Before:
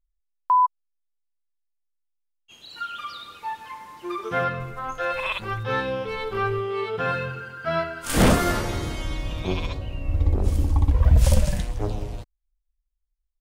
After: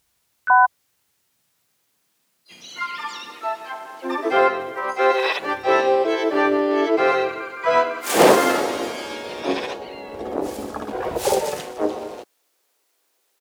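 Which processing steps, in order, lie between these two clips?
requantised 12-bit, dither triangular; high-pass sweep 83 Hz -> 460 Hz, 0.69–4.04; harmoniser -5 st -2 dB, +7 st -4 dB; gain +1 dB

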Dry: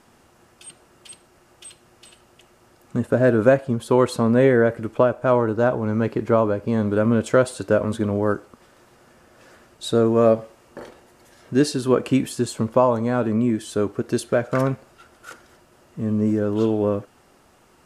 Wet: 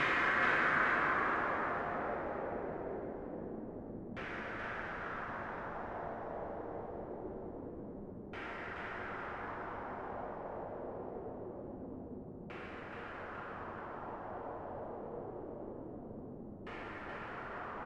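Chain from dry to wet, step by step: cycle switcher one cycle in 3, inverted; Paulstretch 38×, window 0.25 s, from 15.34; LFO low-pass saw down 0.24 Hz 200–2400 Hz; on a send: frequency-shifting echo 0.425 s, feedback 39%, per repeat +110 Hz, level -5 dB; on the sum: gain +7 dB

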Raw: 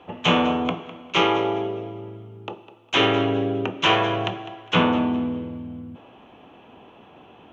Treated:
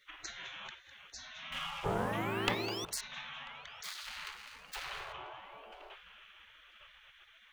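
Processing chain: 3.83–5.13 median filter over 41 samples; compressor 4:1, threshold -31 dBFS, peak gain reduction 14 dB; dynamic EQ 3500 Hz, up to +5 dB, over -50 dBFS, Q 1.2; 1.84–2.85 painted sound rise 230–1200 Hz -22 dBFS; 1.52–3.01 sample leveller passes 2; low shelf 450 Hz +4 dB; darkening echo 0.991 s, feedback 69%, low-pass 2800 Hz, level -20 dB; spectral gate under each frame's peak -25 dB weak; gain +2.5 dB

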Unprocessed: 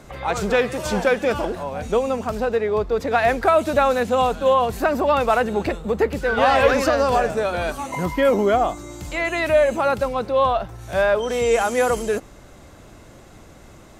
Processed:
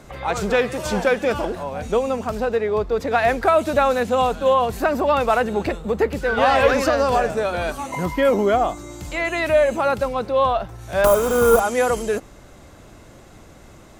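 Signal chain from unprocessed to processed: 11.04–11.6 half-waves squared off; 11.07–11.64 spectral repair 1500–8800 Hz after

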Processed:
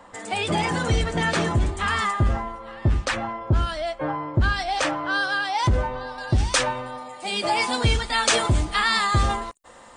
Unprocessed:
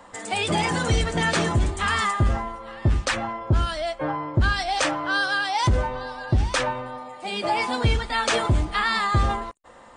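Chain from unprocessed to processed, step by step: high shelf 4000 Hz -4 dB, from 6.18 s +10 dB

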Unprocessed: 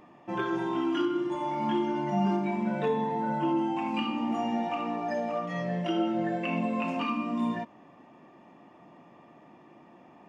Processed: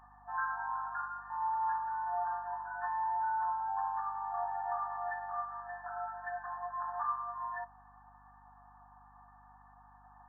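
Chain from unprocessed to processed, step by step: FFT band-pass 700–1800 Hz; hum 50 Hz, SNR 27 dB

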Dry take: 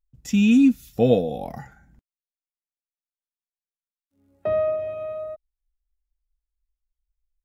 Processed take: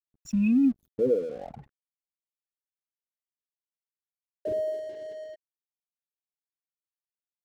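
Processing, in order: formant sharpening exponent 3; crossover distortion -45 dBFS; gain -6 dB

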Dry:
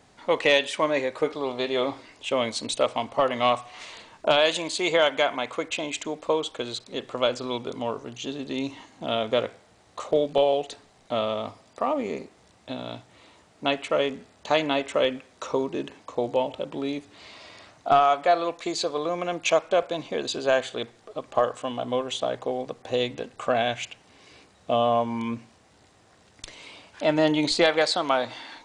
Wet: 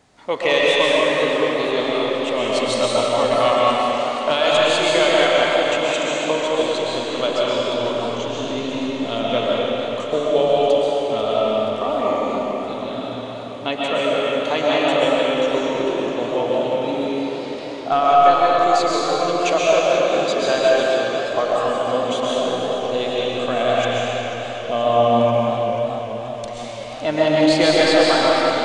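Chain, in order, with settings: digital reverb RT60 3.6 s, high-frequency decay 0.85×, pre-delay 90 ms, DRR -6 dB; warbling echo 0.484 s, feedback 73%, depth 170 cents, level -13.5 dB

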